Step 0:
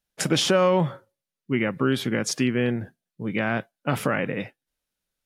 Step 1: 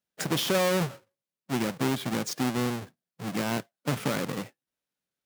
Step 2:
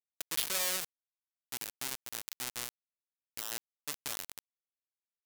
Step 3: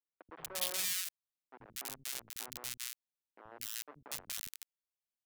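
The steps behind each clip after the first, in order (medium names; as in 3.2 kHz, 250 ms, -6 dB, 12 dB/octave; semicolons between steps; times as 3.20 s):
square wave that keeps the level; high-pass 110 Hz 12 dB/octave; trim -9 dB
amplifier tone stack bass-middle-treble 10-0-10; bit crusher 4-bit
three bands offset in time mids, lows, highs 80/240 ms, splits 250/1400 Hz; trim -2.5 dB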